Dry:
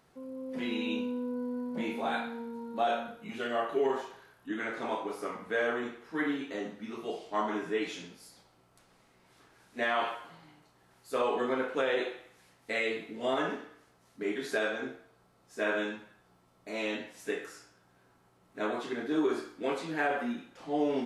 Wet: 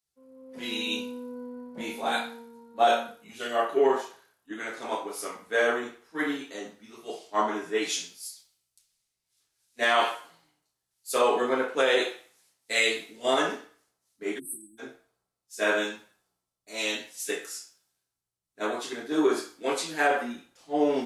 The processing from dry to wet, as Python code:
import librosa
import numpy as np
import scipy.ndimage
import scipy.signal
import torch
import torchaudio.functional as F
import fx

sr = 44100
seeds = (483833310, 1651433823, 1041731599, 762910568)

y = fx.spec_erase(x, sr, start_s=14.39, length_s=0.4, low_hz=370.0, high_hz=7900.0)
y = fx.bass_treble(y, sr, bass_db=-7, treble_db=12)
y = fx.band_widen(y, sr, depth_pct=100)
y = y * librosa.db_to_amplitude(3.5)